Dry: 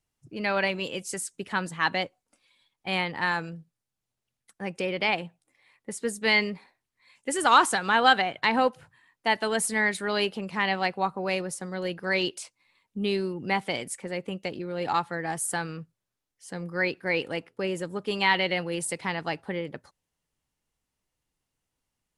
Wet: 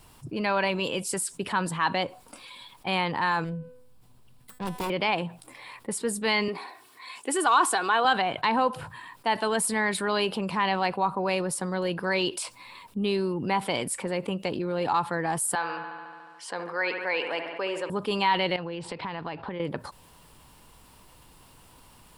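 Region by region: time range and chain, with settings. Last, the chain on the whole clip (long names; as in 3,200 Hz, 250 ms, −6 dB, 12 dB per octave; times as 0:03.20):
0:03.44–0:04.90: phase distortion by the signal itself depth 0.81 ms + low-shelf EQ 350 Hz +11 dB + tuned comb filter 250 Hz, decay 0.47 s, mix 70%
0:06.48–0:08.05: high-pass filter 260 Hz + comb filter 2.7 ms, depth 50%
0:15.55–0:17.90: high-pass filter 570 Hz + high-frequency loss of the air 86 metres + delay with a low-pass on its return 72 ms, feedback 64%, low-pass 2,700 Hz, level −11 dB
0:18.56–0:19.60: low-pass filter 4,200 Hz 24 dB per octave + downward compressor, threshold −41 dBFS
whole clip: thirty-one-band graphic EQ 1,000 Hz +8 dB, 2,000 Hz −5 dB, 6,300 Hz −9 dB; envelope flattener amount 50%; level −7 dB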